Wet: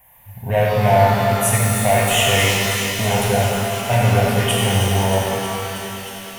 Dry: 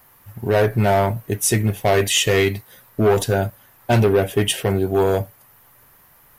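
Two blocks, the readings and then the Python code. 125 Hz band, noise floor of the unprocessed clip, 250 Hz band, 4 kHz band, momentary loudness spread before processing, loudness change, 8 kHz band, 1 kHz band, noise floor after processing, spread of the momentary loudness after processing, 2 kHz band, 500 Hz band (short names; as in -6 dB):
+3.5 dB, -53 dBFS, 0.0 dB, +4.0 dB, 12 LU, +2.0 dB, +3.5 dB, +6.0 dB, -40 dBFS, 10 LU, +5.0 dB, -0.5 dB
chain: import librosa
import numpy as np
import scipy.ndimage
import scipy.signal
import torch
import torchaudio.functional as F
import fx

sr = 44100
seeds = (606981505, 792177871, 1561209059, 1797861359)

y = fx.fixed_phaser(x, sr, hz=1300.0, stages=6)
y = fx.echo_wet_highpass(y, sr, ms=316, feedback_pct=82, hz=2000.0, wet_db=-10.0)
y = fx.rev_shimmer(y, sr, seeds[0], rt60_s=3.0, semitones=12, shimmer_db=-8, drr_db=-4.0)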